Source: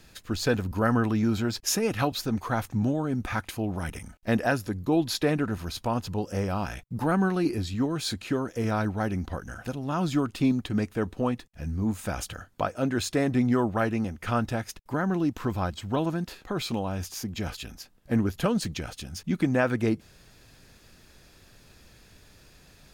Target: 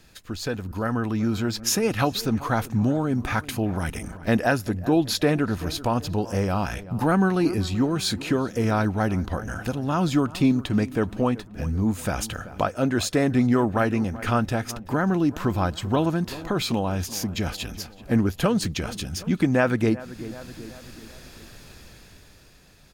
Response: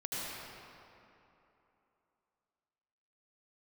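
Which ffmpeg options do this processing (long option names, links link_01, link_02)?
-filter_complex "[0:a]dynaudnorm=framelen=200:gausssize=13:maxgain=11.5dB,asplit=2[link_01][link_02];[link_02]adelay=382,lowpass=frequency=2200:poles=1,volume=-18.5dB,asplit=2[link_03][link_04];[link_04]adelay=382,lowpass=frequency=2200:poles=1,volume=0.5,asplit=2[link_05][link_06];[link_06]adelay=382,lowpass=frequency=2200:poles=1,volume=0.5,asplit=2[link_07][link_08];[link_08]adelay=382,lowpass=frequency=2200:poles=1,volume=0.5[link_09];[link_01][link_03][link_05][link_07][link_09]amix=inputs=5:normalize=0,asplit=2[link_10][link_11];[link_11]acompressor=threshold=-30dB:ratio=6,volume=2dB[link_12];[link_10][link_12]amix=inputs=2:normalize=0,volume=-7.5dB"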